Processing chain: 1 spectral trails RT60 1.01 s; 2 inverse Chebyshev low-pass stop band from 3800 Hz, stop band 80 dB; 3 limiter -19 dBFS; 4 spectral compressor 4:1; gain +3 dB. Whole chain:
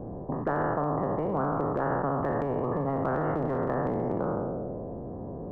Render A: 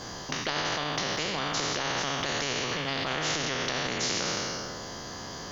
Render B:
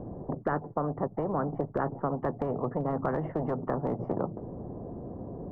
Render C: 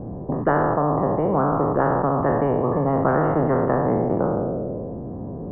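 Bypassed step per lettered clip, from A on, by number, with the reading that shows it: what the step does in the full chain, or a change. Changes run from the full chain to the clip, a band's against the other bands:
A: 2, 2 kHz band +16.0 dB; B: 1, 2 kHz band -2.0 dB; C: 3, mean gain reduction 2.5 dB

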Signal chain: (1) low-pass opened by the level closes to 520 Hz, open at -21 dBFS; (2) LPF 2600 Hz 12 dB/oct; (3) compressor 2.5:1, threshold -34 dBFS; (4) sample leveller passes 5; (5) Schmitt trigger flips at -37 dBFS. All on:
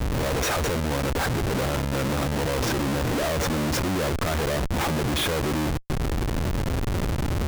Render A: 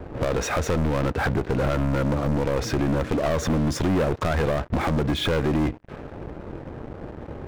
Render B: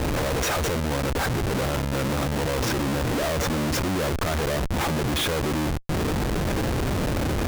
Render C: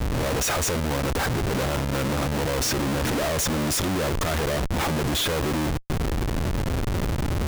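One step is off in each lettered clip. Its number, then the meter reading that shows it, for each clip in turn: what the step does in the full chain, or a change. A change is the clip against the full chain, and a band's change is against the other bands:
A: 5, distortion 0 dB; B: 1, momentary loudness spread change -1 LU; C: 2, 8 kHz band +4.5 dB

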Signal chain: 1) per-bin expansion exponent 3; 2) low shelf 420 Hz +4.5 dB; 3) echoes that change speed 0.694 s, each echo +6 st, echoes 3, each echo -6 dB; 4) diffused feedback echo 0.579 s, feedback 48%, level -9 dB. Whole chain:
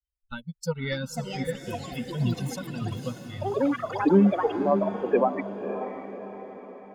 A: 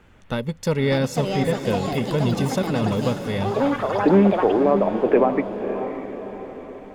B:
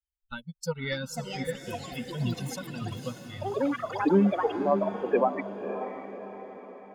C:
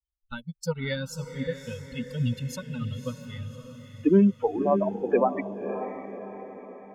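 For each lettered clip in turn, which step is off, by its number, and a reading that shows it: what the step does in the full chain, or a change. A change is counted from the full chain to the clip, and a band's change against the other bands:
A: 1, momentary loudness spread change -4 LU; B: 2, 125 Hz band -3.0 dB; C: 3, 1 kHz band -1.5 dB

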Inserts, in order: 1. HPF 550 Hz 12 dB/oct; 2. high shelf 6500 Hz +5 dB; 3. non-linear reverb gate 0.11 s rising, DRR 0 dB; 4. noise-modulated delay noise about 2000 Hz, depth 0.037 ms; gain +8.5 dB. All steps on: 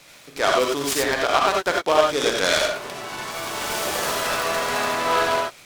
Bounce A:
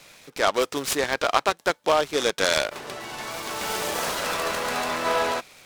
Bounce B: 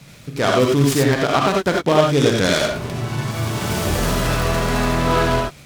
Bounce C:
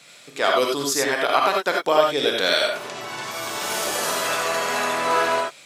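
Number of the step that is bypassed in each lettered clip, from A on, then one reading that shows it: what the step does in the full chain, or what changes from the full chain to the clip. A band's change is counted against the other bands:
3, crest factor change +2.5 dB; 1, 125 Hz band +21.0 dB; 4, 125 Hz band -3.0 dB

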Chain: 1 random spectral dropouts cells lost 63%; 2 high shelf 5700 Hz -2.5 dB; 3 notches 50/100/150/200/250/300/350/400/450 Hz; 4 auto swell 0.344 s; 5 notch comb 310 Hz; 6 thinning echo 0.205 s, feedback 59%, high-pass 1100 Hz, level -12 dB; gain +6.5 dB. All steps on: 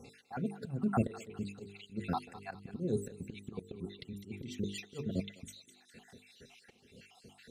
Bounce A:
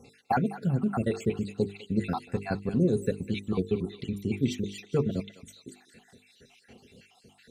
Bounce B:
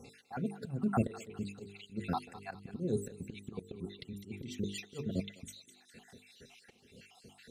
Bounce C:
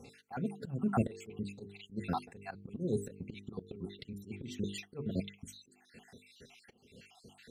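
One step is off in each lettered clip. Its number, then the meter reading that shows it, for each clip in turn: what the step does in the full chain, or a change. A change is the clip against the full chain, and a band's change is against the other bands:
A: 4, crest factor change -5.0 dB; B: 2, 8 kHz band +1.5 dB; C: 6, echo-to-direct -13.0 dB to none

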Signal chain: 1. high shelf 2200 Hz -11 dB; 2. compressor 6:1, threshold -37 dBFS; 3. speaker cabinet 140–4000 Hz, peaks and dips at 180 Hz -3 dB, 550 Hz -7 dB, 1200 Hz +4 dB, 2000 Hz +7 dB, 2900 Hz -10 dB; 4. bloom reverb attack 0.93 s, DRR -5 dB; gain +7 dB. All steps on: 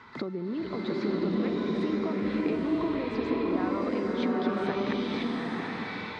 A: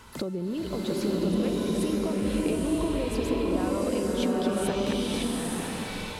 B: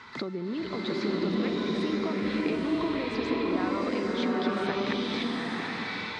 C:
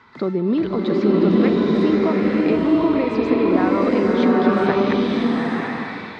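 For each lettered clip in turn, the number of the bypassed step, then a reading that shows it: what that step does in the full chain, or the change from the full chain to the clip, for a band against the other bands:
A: 3, loudness change +2.0 LU; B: 1, 4 kHz band +6.0 dB; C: 2, mean gain reduction 8.0 dB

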